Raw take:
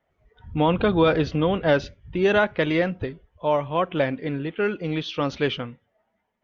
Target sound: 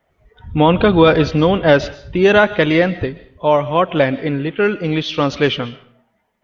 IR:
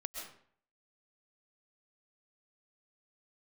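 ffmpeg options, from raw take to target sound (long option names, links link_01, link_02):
-filter_complex "[0:a]asplit=2[link_01][link_02];[1:a]atrim=start_sample=2205,highshelf=frequency=2900:gain=11[link_03];[link_02][link_03]afir=irnorm=-1:irlink=0,volume=-14.5dB[link_04];[link_01][link_04]amix=inputs=2:normalize=0,volume=7dB"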